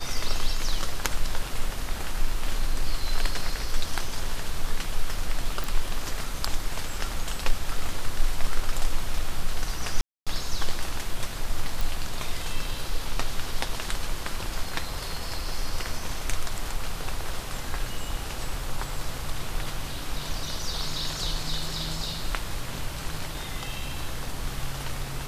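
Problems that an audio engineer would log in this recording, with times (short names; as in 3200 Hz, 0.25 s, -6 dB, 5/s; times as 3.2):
5.64 pop
10.01–10.27 gap 0.256 s
11.81 pop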